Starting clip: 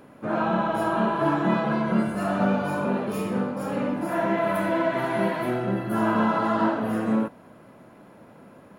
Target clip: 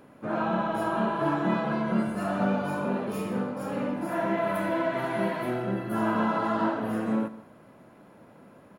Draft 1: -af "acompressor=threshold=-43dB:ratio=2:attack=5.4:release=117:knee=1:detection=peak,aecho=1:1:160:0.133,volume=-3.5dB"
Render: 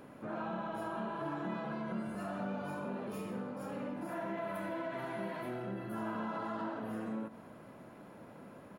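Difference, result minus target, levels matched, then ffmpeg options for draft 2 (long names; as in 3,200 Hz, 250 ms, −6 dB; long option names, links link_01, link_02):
downward compressor: peak gain reduction +14 dB
-af "aecho=1:1:160:0.133,volume=-3.5dB"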